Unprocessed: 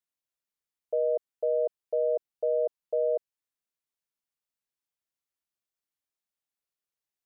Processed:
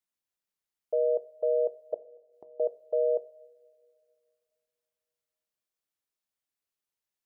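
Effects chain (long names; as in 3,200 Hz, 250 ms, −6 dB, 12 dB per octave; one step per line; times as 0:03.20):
0:01.94–0:02.60: gate with flip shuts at −38 dBFS, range −27 dB
coupled-rooms reverb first 0.54 s, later 2.7 s, from −18 dB, DRR 13.5 dB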